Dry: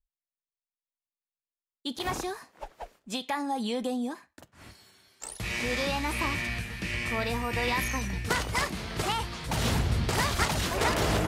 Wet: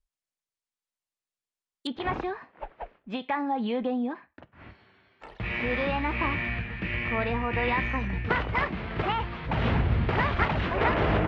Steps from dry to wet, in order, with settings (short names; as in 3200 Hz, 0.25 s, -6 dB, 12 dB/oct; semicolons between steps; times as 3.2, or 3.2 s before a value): LPF 10000 Hz 24 dB/oct, from 1.87 s 2700 Hz; gain +2.5 dB